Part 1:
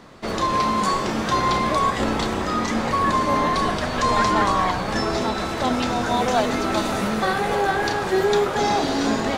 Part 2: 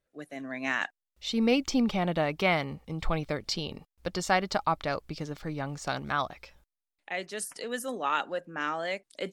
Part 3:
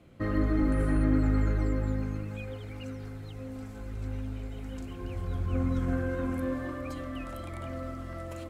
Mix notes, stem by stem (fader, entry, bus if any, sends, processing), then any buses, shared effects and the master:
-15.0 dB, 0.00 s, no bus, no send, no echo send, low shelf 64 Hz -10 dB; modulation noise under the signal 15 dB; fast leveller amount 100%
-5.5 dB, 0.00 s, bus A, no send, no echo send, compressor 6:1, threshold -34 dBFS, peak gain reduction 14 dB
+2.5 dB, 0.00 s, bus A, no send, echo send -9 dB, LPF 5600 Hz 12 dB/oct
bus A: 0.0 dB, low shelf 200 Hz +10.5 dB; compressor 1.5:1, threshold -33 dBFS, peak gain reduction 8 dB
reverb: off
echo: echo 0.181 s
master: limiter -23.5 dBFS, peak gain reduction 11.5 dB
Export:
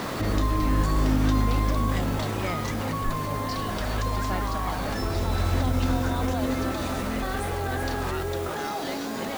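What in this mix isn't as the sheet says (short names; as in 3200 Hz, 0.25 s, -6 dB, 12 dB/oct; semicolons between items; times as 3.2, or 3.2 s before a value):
stem 2: missing compressor 6:1, threshold -34 dBFS, peak gain reduction 14 dB; master: missing limiter -23.5 dBFS, peak gain reduction 11.5 dB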